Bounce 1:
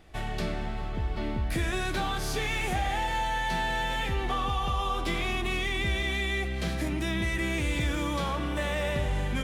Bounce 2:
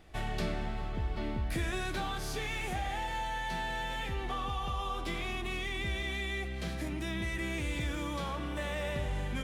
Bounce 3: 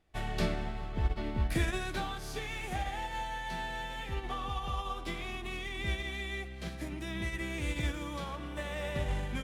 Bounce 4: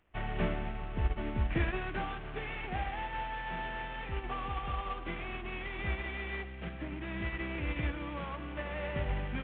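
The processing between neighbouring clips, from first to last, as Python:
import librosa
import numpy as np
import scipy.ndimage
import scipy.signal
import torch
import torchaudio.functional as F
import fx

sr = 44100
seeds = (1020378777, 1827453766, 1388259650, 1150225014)

y1 = fx.rider(x, sr, range_db=4, speed_s=2.0)
y1 = F.gain(torch.from_numpy(y1), -6.0).numpy()
y2 = fx.upward_expand(y1, sr, threshold_db=-44.0, expansion=2.5)
y2 = F.gain(torch.from_numpy(y2), 6.5).numpy()
y3 = fx.cvsd(y2, sr, bps=16000)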